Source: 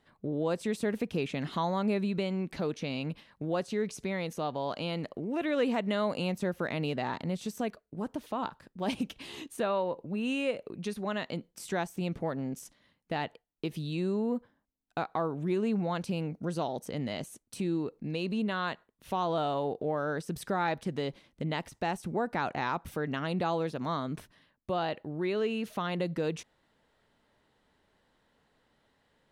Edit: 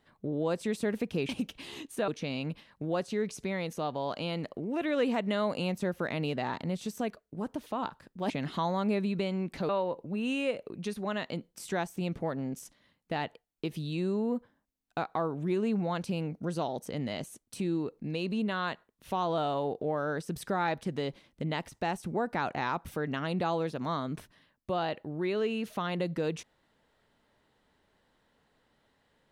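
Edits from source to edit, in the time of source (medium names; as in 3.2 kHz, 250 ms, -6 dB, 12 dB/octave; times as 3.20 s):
1.29–2.68 s: swap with 8.90–9.69 s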